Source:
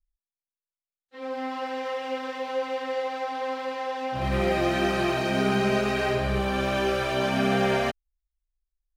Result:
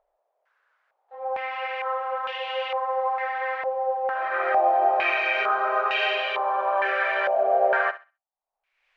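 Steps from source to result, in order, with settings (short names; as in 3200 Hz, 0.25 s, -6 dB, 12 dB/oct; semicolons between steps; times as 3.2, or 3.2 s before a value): inverse Chebyshev high-pass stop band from 250 Hz, stop band 40 dB; upward compressor, threshold -42 dBFS; on a send: thinning echo 65 ms, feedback 25%, high-pass 660 Hz, level -13.5 dB; on the sum: stepped low-pass 2.2 Hz 650–2900 Hz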